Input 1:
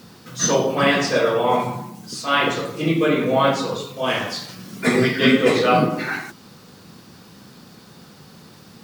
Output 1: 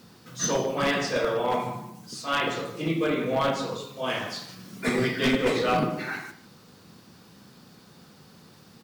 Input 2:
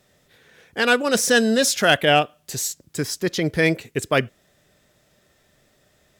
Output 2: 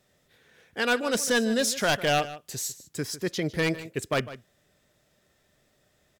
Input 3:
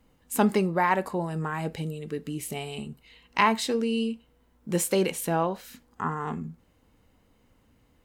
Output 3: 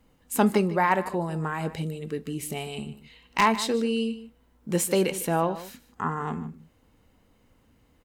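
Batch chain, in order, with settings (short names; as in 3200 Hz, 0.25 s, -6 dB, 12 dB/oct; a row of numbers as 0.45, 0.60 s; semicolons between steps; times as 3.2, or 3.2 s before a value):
one-sided fold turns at -11 dBFS; outdoor echo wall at 26 m, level -15 dB; match loudness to -27 LUFS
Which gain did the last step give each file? -7.0, -6.5, +1.0 dB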